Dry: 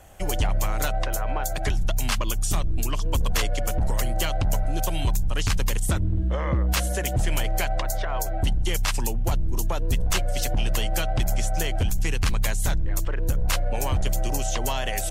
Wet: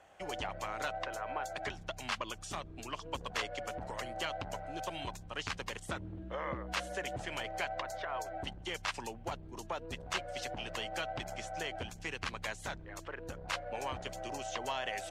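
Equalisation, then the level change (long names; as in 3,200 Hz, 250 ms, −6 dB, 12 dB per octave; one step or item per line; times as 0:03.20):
high-pass filter 880 Hz 6 dB per octave
head-to-tape spacing loss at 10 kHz 21 dB
−2.0 dB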